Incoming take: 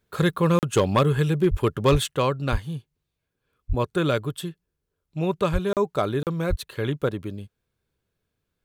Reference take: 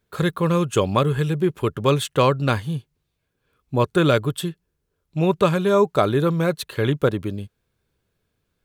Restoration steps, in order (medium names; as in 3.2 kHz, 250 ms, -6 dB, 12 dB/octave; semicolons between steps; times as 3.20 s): clip repair -11.5 dBFS; de-plosive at 1.50/1.91/2.51/3.68/5.52/6.49 s; interpolate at 0.59/5.73/6.23 s, 38 ms; gain correction +5.5 dB, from 2.11 s